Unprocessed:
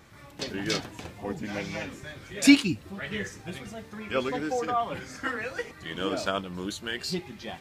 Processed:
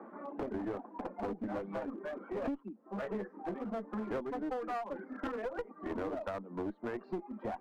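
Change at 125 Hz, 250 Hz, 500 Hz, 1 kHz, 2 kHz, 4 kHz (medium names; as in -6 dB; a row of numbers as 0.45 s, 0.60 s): -11.0 dB, -11.0 dB, -4.5 dB, -7.0 dB, -16.0 dB, -27.5 dB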